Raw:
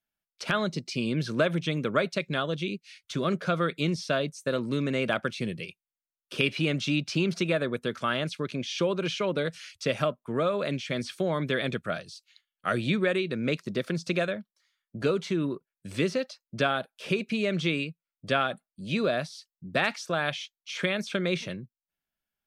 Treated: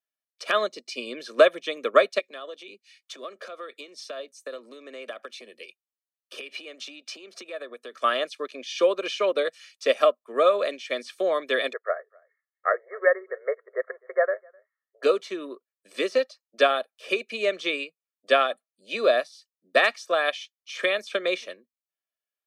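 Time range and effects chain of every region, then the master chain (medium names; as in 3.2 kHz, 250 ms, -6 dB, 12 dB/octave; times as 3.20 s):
2.19–8.02 s: compression 16:1, threshold -31 dBFS + steep high-pass 190 Hz
11.73–15.03 s: brick-wall FIR band-pass 380–2200 Hz + delay 256 ms -20.5 dB
whole clip: steep high-pass 260 Hz 48 dB/octave; comb 1.7 ms, depth 57%; upward expansion 1.5:1, over -44 dBFS; trim +7 dB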